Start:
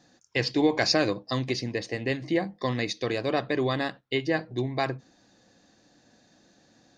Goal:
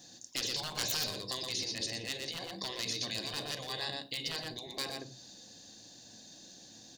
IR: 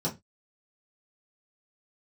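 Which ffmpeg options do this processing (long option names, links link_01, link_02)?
-filter_complex "[0:a]bandreject=frequency=1300:width=5.2,aeval=exprs='0.126*(abs(mod(val(0)/0.126+3,4)-2)-1)':channel_layout=same,aecho=1:1:120:0.299,acompressor=threshold=-42dB:ratio=1.5,asplit=2[link_01][link_02];[1:a]atrim=start_sample=2205,asetrate=29988,aresample=44100,adelay=33[link_03];[link_02][link_03]afir=irnorm=-1:irlink=0,volume=-23dB[link_04];[link_01][link_04]amix=inputs=2:normalize=0,alimiter=level_in=3.5dB:limit=-24dB:level=0:latency=1:release=48,volume=-3.5dB,aexciter=amount=4:drive=5.2:freq=3000,afftfilt=real='re*lt(hypot(re,im),0.0631)':imag='im*lt(hypot(re,im),0.0631)':win_size=1024:overlap=0.75,adynamicequalizer=threshold=0.002:dfrequency=4500:dqfactor=3.1:tfrequency=4500:tqfactor=3.1:attack=5:release=100:ratio=0.375:range=2:mode=boostabove:tftype=bell"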